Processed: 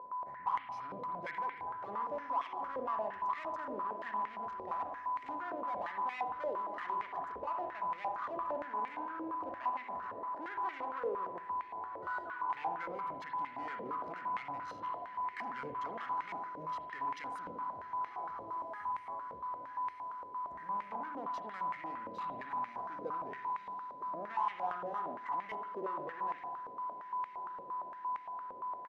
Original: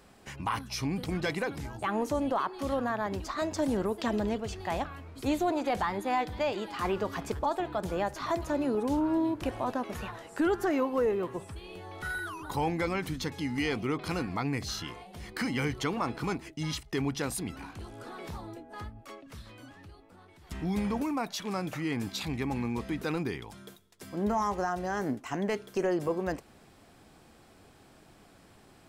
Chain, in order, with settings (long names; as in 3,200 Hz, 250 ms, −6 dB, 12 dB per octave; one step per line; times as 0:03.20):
adaptive Wiener filter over 15 samples
comb filter 1 ms, depth 31%
in parallel at +1 dB: brickwall limiter −25.5 dBFS, peak gain reduction 7 dB
on the sum: soft clipping −29.5 dBFS, distortion −8 dB
steady tone 1,000 Hz −30 dBFS
on a send: feedback delay with all-pass diffusion 1,563 ms, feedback 72%, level −15.5 dB
on the sum: spring reverb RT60 1.2 s, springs 56 ms, chirp 35 ms, DRR 4.5 dB
band-pass on a step sequencer 8.7 Hz 520–2,100 Hz